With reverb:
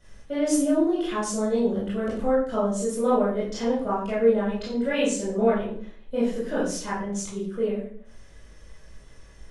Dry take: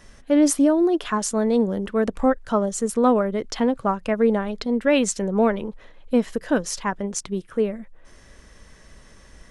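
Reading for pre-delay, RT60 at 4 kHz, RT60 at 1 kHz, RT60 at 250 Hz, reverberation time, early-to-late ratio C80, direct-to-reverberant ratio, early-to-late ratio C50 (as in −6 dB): 20 ms, 0.40 s, 0.45 s, 0.60 s, 0.55 s, 6.5 dB, −10.0 dB, 2.0 dB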